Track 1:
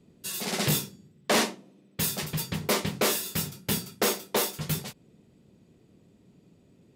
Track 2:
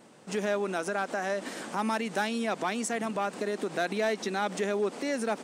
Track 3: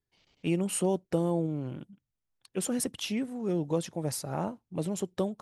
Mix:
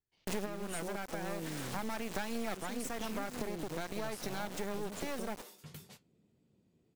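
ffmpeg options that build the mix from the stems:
ffmpeg -i stem1.wav -i stem2.wav -i stem3.wav -filter_complex "[0:a]acompressor=threshold=-33dB:ratio=12,flanger=delay=7:depth=6:regen=-62:speed=1.3:shape=triangular,adelay=1050,volume=-9dB[link_01];[1:a]acontrast=49,acrusher=bits=3:dc=4:mix=0:aa=0.000001,volume=2.5dB[link_02];[2:a]volume=-6.5dB,asplit=2[link_03][link_04];[link_04]apad=whole_len=239668[link_05];[link_02][link_05]sidechaincompress=threshold=-42dB:ratio=4:attack=16:release=1420[link_06];[link_01][link_03]amix=inputs=2:normalize=0,alimiter=level_in=6dB:limit=-24dB:level=0:latency=1:release=491,volume=-6dB,volume=0dB[link_07];[link_06][link_07]amix=inputs=2:normalize=0,acompressor=threshold=-34dB:ratio=4" out.wav

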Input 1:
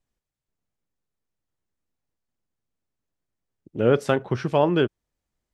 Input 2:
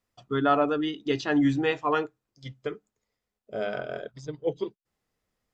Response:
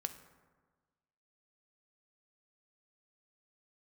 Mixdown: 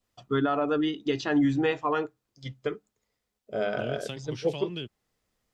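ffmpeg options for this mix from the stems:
-filter_complex "[0:a]highshelf=frequency=2100:width_type=q:width=1.5:gain=14,acrossover=split=230[link_01][link_02];[link_02]acompressor=threshold=-29dB:ratio=2.5[link_03];[link_01][link_03]amix=inputs=2:normalize=0,volume=-11.5dB[link_04];[1:a]alimiter=limit=-18dB:level=0:latency=1:release=155,adynamicequalizer=threshold=0.00891:dfrequency=1500:dqfactor=0.7:tfrequency=1500:tqfactor=0.7:attack=5:release=100:ratio=0.375:range=1.5:mode=cutabove:tftype=highshelf,volume=2dB[link_05];[link_04][link_05]amix=inputs=2:normalize=0"

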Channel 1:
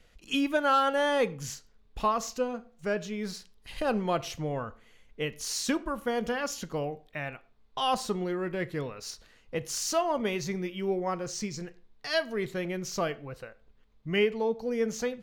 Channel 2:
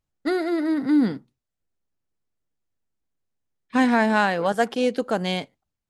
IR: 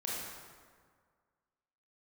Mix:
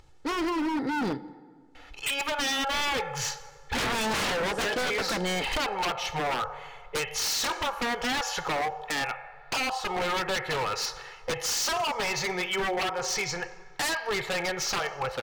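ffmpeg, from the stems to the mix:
-filter_complex "[0:a]firequalizer=gain_entry='entry(160,0);entry(260,-17);entry(390,0);entry(750,15);entry(8700,-1)':delay=0.05:min_phase=1,acompressor=threshold=-25dB:ratio=6,adelay=1750,volume=1.5dB,asplit=2[link_01][link_02];[link_02]volume=-15.5dB[link_03];[1:a]lowpass=6700,acompressor=mode=upward:threshold=-42dB:ratio=2.5,asoftclip=type=tanh:threshold=-19dB,volume=0.5dB,asplit=2[link_04][link_05];[link_05]volume=-18.5dB[link_06];[2:a]atrim=start_sample=2205[link_07];[link_03][link_06]amix=inputs=2:normalize=0[link_08];[link_08][link_07]afir=irnorm=-1:irlink=0[link_09];[link_01][link_04][link_09]amix=inputs=3:normalize=0,equalizer=frequency=800:width_type=o:width=0.84:gain=3.5,aecho=1:1:2.3:0.59,aeval=exprs='0.0708*(abs(mod(val(0)/0.0708+3,4)-2)-1)':channel_layout=same"

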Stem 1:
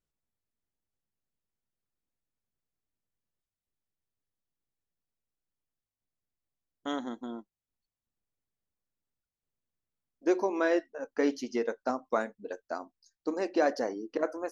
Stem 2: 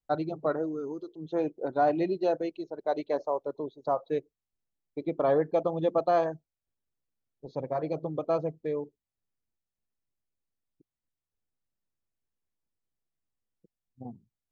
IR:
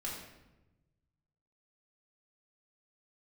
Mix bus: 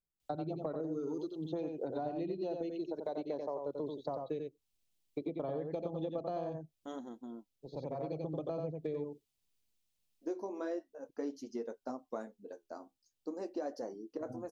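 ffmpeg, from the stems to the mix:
-filter_complex "[0:a]equalizer=frequency=2200:width=0.67:gain=-13.5,flanger=delay=4.8:depth=9.7:regen=-56:speed=0.43:shape=triangular,volume=-2.5dB,asplit=2[link_01][link_02];[1:a]highshelf=frequency=2200:width_type=q:width=1.5:gain=7.5,acrossover=split=300|1100[link_03][link_04][link_05];[link_03]acompressor=threshold=-38dB:ratio=4[link_06];[link_04]acompressor=threshold=-36dB:ratio=4[link_07];[link_05]acompressor=threshold=-60dB:ratio=4[link_08];[link_06][link_07][link_08]amix=inputs=3:normalize=0,adelay=200,volume=1dB,asplit=2[link_09][link_10];[link_10]volume=-6dB[link_11];[link_02]apad=whole_len=648920[link_12];[link_09][link_12]sidechaincompress=threshold=-53dB:ratio=3:attack=16:release=1500[link_13];[link_11]aecho=0:1:89:1[link_14];[link_01][link_13][link_14]amix=inputs=3:normalize=0,acompressor=threshold=-34dB:ratio=6"

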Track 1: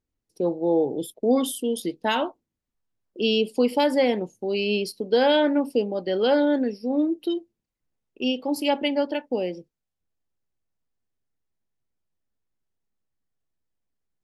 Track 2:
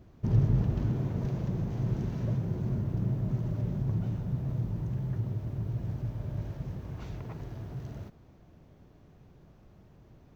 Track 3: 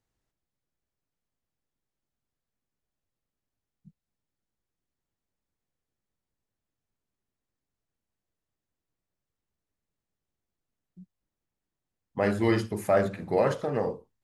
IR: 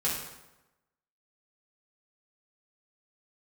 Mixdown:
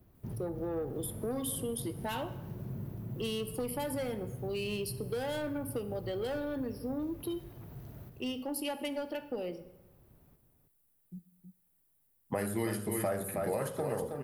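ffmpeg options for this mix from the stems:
-filter_complex "[0:a]asoftclip=type=tanh:threshold=-18dB,volume=-8.5dB,asplit=3[link_01][link_02][link_03];[link_02]volume=-17dB[link_04];[1:a]alimiter=limit=-24dB:level=0:latency=1:release=89,volume=-7.5dB,asplit=2[link_05][link_06];[link_06]volume=-7dB[link_07];[2:a]adelay=150,volume=2.5dB,asplit=3[link_08][link_09][link_10];[link_09]volume=-22dB[link_11];[link_10]volume=-7.5dB[link_12];[link_03]apad=whole_len=461159[link_13];[link_05][link_13]sidechaincompress=threshold=-35dB:ratio=8:attack=16:release=860[link_14];[3:a]atrim=start_sample=2205[link_15];[link_04][link_11]amix=inputs=2:normalize=0[link_16];[link_16][link_15]afir=irnorm=-1:irlink=0[link_17];[link_07][link_12]amix=inputs=2:normalize=0,aecho=0:1:319:1[link_18];[link_01][link_14][link_08][link_17][link_18]amix=inputs=5:normalize=0,acrossover=split=110|7000[link_19][link_20][link_21];[link_19]acompressor=threshold=-48dB:ratio=4[link_22];[link_20]acompressor=threshold=-33dB:ratio=4[link_23];[link_21]acompressor=threshold=-58dB:ratio=4[link_24];[link_22][link_23][link_24]amix=inputs=3:normalize=0,aexciter=amount=5.7:drive=7.7:freq=8900"

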